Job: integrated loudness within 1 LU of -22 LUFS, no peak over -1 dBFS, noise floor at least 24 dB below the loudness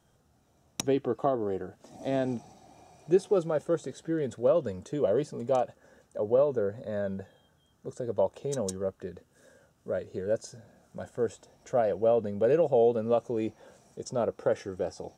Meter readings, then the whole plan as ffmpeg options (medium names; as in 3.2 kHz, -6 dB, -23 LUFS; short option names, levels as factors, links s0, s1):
loudness -29.5 LUFS; peak level -12.5 dBFS; loudness target -22.0 LUFS
-> -af "volume=2.37"